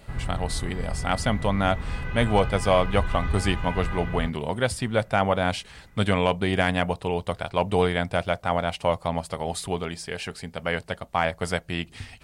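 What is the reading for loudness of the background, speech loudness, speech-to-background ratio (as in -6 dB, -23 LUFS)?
-32.5 LUFS, -26.5 LUFS, 6.0 dB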